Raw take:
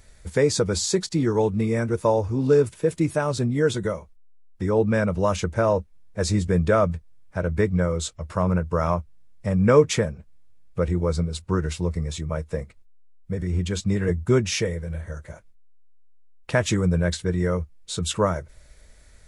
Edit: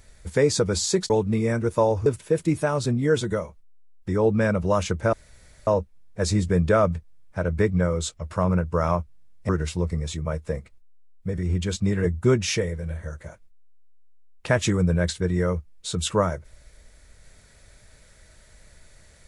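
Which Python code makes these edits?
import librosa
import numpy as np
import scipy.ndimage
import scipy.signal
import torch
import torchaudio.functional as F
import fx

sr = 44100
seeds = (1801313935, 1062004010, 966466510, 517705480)

y = fx.edit(x, sr, fx.cut(start_s=1.1, length_s=0.27),
    fx.cut(start_s=2.33, length_s=0.26),
    fx.insert_room_tone(at_s=5.66, length_s=0.54),
    fx.cut(start_s=9.48, length_s=2.05), tone=tone)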